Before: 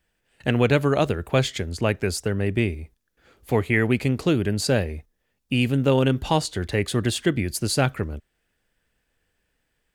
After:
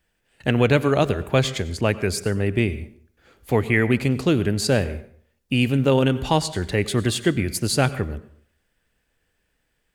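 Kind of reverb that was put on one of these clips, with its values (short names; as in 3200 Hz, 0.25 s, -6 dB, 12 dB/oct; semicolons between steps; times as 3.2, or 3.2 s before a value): plate-style reverb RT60 0.57 s, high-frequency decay 0.75×, pre-delay 80 ms, DRR 15.5 dB; gain +1.5 dB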